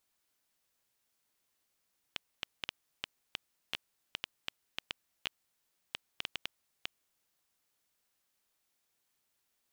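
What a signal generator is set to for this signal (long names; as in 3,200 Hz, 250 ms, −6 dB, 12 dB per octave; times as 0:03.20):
Geiger counter clicks 4.5 per second −16.5 dBFS 4.70 s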